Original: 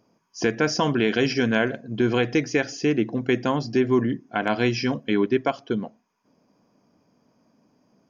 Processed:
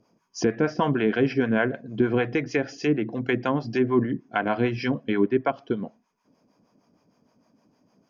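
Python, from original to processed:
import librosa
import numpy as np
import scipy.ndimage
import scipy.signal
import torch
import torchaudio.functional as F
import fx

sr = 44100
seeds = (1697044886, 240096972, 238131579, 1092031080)

y = fx.harmonic_tremolo(x, sr, hz=6.5, depth_pct=70, crossover_hz=530.0)
y = fx.env_lowpass_down(y, sr, base_hz=2000.0, full_db=-22.5)
y = y * librosa.db_to_amplitude(2.5)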